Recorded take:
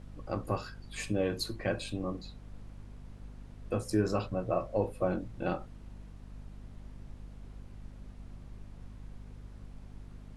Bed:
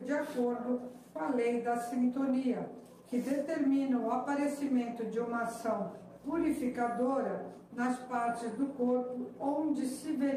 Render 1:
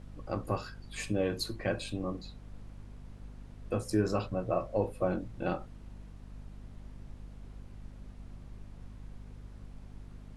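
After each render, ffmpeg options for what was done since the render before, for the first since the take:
-af anull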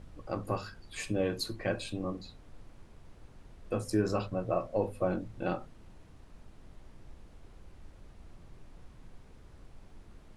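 -af "bandreject=f=50:t=h:w=4,bandreject=f=100:t=h:w=4,bandreject=f=150:t=h:w=4,bandreject=f=200:t=h:w=4,bandreject=f=250:t=h:w=4"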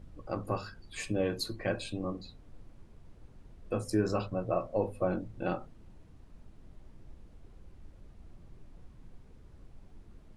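-af "afftdn=nr=6:nf=-56"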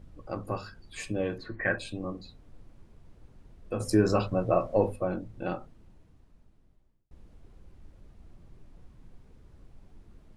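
-filter_complex "[0:a]asettb=1/sr,asplit=3[a][b][c];[a]atrim=end=1.384[d];[b]atrim=start=1.38:end=1.78,asetpts=PTS-STARTPTS,afade=t=in:d=0.004:c=qsin,afade=t=out:st=0.396:d=0.004:c=qsin,lowpass=f=1.8k:t=q:w=5.6[e];[c]atrim=start=1.776[f];[d][e]acrossfade=d=0.004:c1=hsin:c2=qsin[g];[g][f]acrossfade=d=0.004:c1=qsin:c2=hsin,asettb=1/sr,asplit=3[h][i][j];[h]atrim=end=3.804[k];[i]atrim=start=3.8:end=4.96,asetpts=PTS-STARTPTS,afade=t=in:d=0.004:c=qsin,afade=t=out:st=1.156:d=0.004:c=qsin,acontrast=53[l];[j]atrim=start=4.956[m];[k][l]acrossfade=d=0.004:c1=hsin:c2=qsin[n];[n][m]acrossfade=d=0.004:c1=qsin:c2=hsin,asplit=2[o][p];[o]atrim=end=7.11,asetpts=PTS-STARTPTS,afade=t=out:st=5.57:d=1.54[q];[p]atrim=start=7.11,asetpts=PTS-STARTPTS,afade=t=in:d=0.004:c=hsin[r];[q][r]concat=n=2:v=0:a=1"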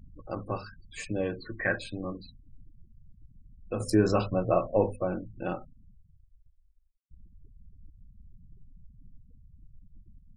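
-af "afftfilt=real='re*gte(hypot(re,im),0.00631)':imag='im*gte(hypot(re,im),0.00631)':win_size=1024:overlap=0.75"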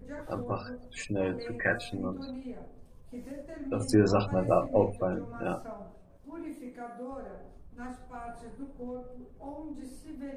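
-filter_complex "[1:a]volume=-9.5dB[a];[0:a][a]amix=inputs=2:normalize=0"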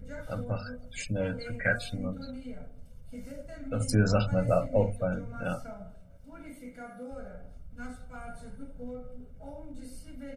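-af "equalizer=f=780:t=o:w=0.55:g=-12.5,aecho=1:1:1.4:0.99"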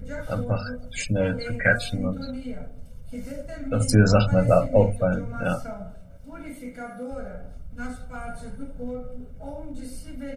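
-af "volume=7.5dB"

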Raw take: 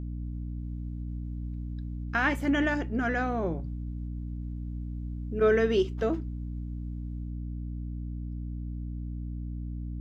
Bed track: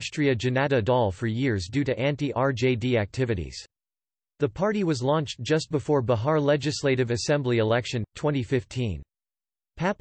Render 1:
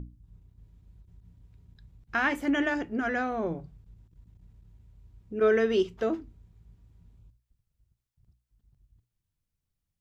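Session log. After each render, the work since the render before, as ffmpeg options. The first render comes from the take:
-af "bandreject=f=60:t=h:w=6,bandreject=f=120:t=h:w=6,bandreject=f=180:t=h:w=6,bandreject=f=240:t=h:w=6,bandreject=f=300:t=h:w=6"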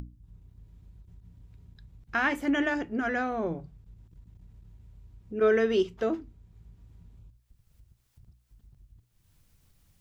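-af "acompressor=mode=upward:threshold=-45dB:ratio=2.5"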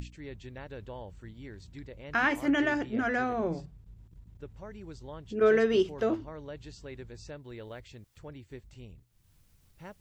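-filter_complex "[1:a]volume=-21dB[a];[0:a][a]amix=inputs=2:normalize=0"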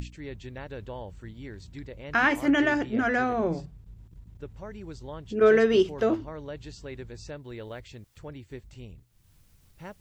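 -af "volume=4dB"

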